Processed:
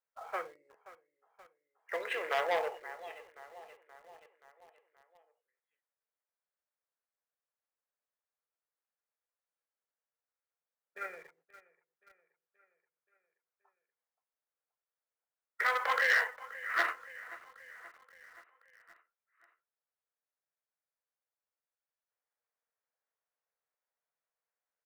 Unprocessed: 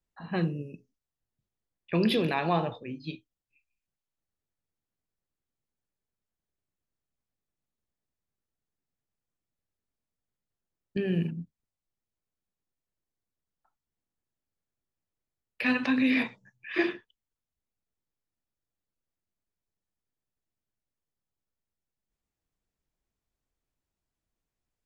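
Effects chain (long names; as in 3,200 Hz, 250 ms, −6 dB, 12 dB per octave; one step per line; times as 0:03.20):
on a send: repeating echo 527 ms, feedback 58%, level −18 dB
on the sum: formants moved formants −4 semitones
elliptic high-pass filter 470 Hz, stop band 50 dB
high shelf with overshoot 2,500 Hz −9 dB, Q 1.5
in parallel at −10 dB: log-companded quantiser 4 bits
on the sum: saturating transformer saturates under 2,300 Hz
level −1.5 dB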